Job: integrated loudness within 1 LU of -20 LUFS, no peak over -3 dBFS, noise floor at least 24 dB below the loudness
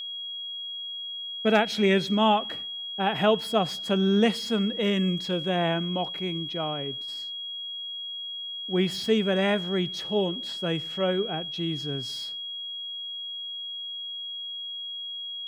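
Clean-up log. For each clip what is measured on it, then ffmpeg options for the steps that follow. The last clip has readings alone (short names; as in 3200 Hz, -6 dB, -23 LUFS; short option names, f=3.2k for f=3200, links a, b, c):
steady tone 3300 Hz; tone level -33 dBFS; loudness -27.5 LUFS; peak -7.5 dBFS; loudness target -20.0 LUFS
-> -af "bandreject=f=3.3k:w=30"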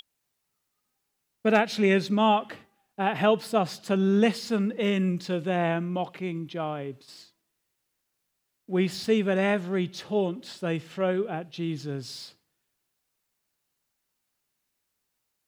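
steady tone none; loudness -26.5 LUFS; peak -8.0 dBFS; loudness target -20.0 LUFS
-> -af "volume=6.5dB,alimiter=limit=-3dB:level=0:latency=1"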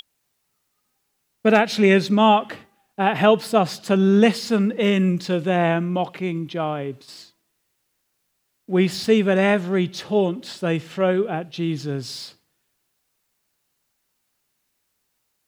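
loudness -20.5 LUFS; peak -3.0 dBFS; noise floor -73 dBFS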